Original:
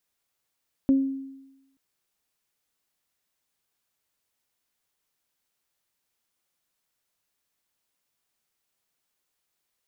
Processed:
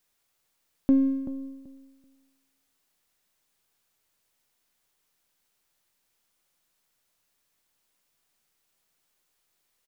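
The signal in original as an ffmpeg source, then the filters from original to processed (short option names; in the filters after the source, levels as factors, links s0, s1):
-f lavfi -i "aevalsrc='0.188*pow(10,-3*t/0.98)*sin(2*PI*270*t)+0.0266*pow(10,-3*t/0.35)*sin(2*PI*540*t)':d=0.88:s=44100"
-filter_complex "[0:a]aeval=exprs='if(lt(val(0),0),0.708*val(0),val(0))':c=same,asplit=2[s0][s1];[s1]alimiter=level_in=1.12:limit=0.0631:level=0:latency=1,volume=0.891,volume=1[s2];[s0][s2]amix=inputs=2:normalize=0,asplit=2[s3][s4];[s4]adelay=383,lowpass=f=850:p=1,volume=0.282,asplit=2[s5][s6];[s6]adelay=383,lowpass=f=850:p=1,volume=0.21,asplit=2[s7][s8];[s8]adelay=383,lowpass=f=850:p=1,volume=0.21[s9];[s3][s5][s7][s9]amix=inputs=4:normalize=0"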